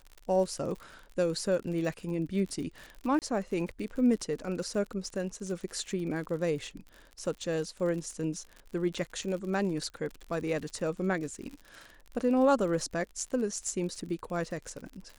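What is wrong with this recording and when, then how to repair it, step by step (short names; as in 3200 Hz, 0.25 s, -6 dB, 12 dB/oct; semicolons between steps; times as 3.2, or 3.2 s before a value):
crackle 58/s -38 dBFS
3.19–3.22 gap 28 ms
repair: de-click; interpolate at 3.19, 28 ms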